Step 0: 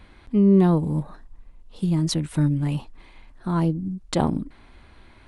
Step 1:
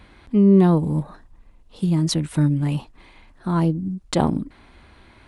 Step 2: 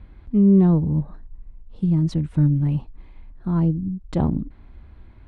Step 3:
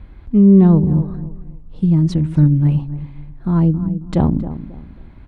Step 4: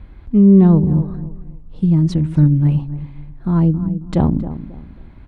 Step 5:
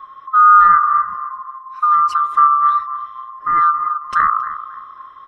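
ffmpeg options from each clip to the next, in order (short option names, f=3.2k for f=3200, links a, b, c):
-af "highpass=f=45:p=1,volume=2.5dB"
-af "aemphasis=mode=reproduction:type=riaa,volume=-8.5dB"
-filter_complex "[0:a]asplit=2[a][b];[b]adelay=270,lowpass=f=1.4k:p=1,volume=-12.5dB,asplit=2[c][d];[d]adelay=270,lowpass=f=1.4k:p=1,volume=0.3,asplit=2[e][f];[f]adelay=270,lowpass=f=1.4k:p=1,volume=0.3[g];[a][c][e][g]amix=inputs=4:normalize=0,volume=5.5dB"
-af anull
-af "afftfilt=real='real(if(lt(b,960),b+48*(1-2*mod(floor(b/48),2)),b),0)':imag='imag(if(lt(b,960),b+48*(1-2*mod(floor(b/48),2)),b),0)':win_size=2048:overlap=0.75"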